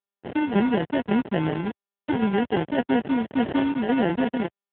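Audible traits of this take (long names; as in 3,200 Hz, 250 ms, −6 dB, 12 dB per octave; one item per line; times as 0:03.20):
aliases and images of a low sample rate 1,200 Hz, jitter 0%
tremolo saw down 1.8 Hz, depth 55%
a quantiser's noise floor 6 bits, dither none
AMR narrowband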